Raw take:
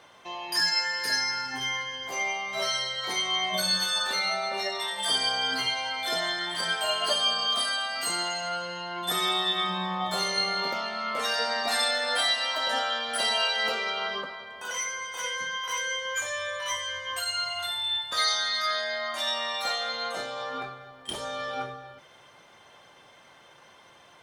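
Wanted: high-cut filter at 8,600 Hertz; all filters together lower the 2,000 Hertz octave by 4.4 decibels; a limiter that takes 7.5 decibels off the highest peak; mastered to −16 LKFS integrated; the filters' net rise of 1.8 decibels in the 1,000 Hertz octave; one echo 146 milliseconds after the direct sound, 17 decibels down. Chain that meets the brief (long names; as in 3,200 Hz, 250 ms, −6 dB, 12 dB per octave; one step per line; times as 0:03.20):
low-pass filter 8,600 Hz
parametric band 1,000 Hz +4.5 dB
parametric band 2,000 Hz −7 dB
brickwall limiter −21 dBFS
single-tap delay 146 ms −17 dB
level +14 dB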